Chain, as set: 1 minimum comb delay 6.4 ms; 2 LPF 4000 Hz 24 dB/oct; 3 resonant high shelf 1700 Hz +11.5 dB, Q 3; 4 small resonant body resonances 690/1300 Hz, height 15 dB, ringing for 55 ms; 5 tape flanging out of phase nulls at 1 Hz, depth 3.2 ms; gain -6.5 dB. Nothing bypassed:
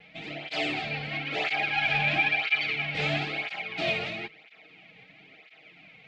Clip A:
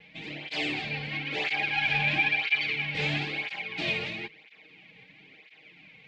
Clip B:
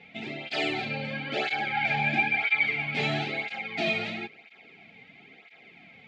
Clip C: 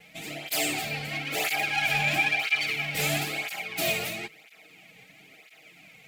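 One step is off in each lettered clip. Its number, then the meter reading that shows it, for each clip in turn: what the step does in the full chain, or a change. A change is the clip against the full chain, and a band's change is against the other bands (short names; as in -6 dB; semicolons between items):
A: 4, 500 Hz band -4.0 dB; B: 1, 4 kHz band -3.0 dB; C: 2, momentary loudness spread change -1 LU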